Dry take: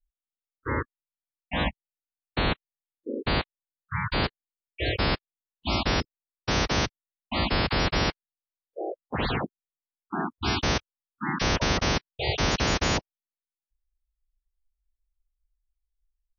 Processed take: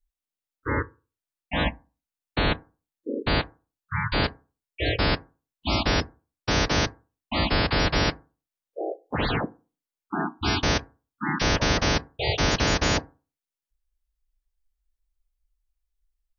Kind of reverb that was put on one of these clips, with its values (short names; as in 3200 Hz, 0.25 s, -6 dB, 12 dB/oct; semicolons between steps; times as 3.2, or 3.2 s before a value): FDN reverb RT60 0.33 s, low-frequency decay 1.05×, high-frequency decay 0.35×, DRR 14 dB; gain +2 dB